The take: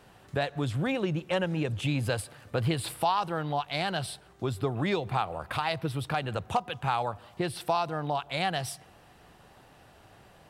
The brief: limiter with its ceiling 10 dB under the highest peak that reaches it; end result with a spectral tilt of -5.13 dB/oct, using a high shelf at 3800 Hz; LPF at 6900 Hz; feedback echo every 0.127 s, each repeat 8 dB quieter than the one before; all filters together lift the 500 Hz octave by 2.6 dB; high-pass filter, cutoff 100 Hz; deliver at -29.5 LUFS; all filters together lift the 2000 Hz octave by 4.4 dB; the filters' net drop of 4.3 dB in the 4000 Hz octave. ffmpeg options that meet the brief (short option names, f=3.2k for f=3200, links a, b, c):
-af "highpass=100,lowpass=6.9k,equalizer=f=500:t=o:g=3,equalizer=f=2k:t=o:g=8.5,highshelf=f=3.8k:g=-6,equalizer=f=4k:t=o:g=-6,alimiter=limit=-21.5dB:level=0:latency=1,aecho=1:1:127|254|381|508|635:0.398|0.159|0.0637|0.0255|0.0102,volume=3dB"